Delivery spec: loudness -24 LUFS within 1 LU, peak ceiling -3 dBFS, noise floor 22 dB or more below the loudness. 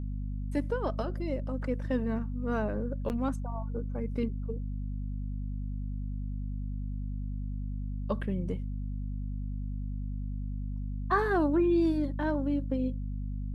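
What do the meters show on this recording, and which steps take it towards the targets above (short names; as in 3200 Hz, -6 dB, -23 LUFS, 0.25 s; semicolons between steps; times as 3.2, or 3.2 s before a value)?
dropouts 1; longest dropout 9.3 ms; hum 50 Hz; harmonics up to 250 Hz; hum level -32 dBFS; loudness -33.0 LUFS; peak -15.5 dBFS; loudness target -24.0 LUFS
-> interpolate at 3.09, 9.3 ms; de-hum 50 Hz, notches 5; gain +9 dB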